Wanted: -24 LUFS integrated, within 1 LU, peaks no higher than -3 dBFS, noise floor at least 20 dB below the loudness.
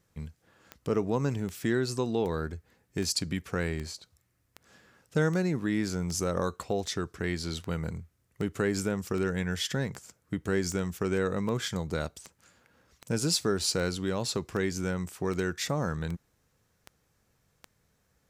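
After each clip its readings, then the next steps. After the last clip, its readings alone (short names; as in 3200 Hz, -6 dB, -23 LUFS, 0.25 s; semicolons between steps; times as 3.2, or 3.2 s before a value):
clicks 23; loudness -31.0 LUFS; peak -14.5 dBFS; loudness target -24.0 LUFS
-> de-click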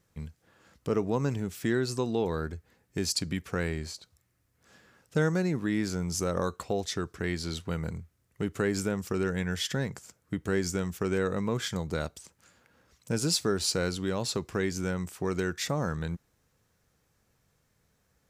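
clicks 0; loudness -31.0 LUFS; peak -14.5 dBFS; loudness target -24.0 LUFS
-> gain +7 dB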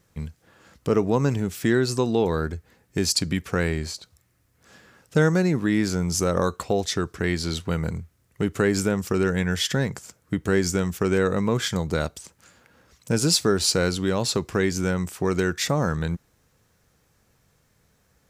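loudness -24.0 LUFS; peak -7.5 dBFS; noise floor -66 dBFS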